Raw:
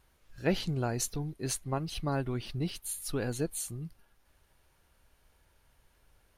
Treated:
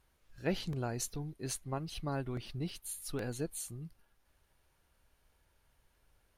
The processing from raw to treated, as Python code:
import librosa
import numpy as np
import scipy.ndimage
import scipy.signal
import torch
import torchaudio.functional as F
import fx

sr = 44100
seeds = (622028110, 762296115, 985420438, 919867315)

y = fx.buffer_crackle(x, sr, first_s=0.73, period_s=0.82, block=64, kind='repeat')
y = y * 10.0 ** (-5.0 / 20.0)